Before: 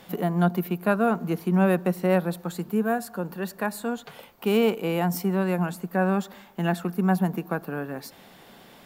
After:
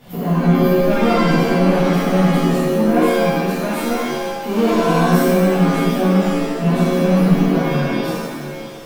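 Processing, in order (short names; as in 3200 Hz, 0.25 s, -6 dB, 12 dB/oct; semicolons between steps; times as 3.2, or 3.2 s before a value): reverse delay 0.426 s, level -12.5 dB; low shelf 270 Hz +11 dB; soft clip -16.5 dBFS, distortion -11 dB; shimmer reverb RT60 1 s, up +7 st, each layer -2 dB, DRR -11 dB; gain -6 dB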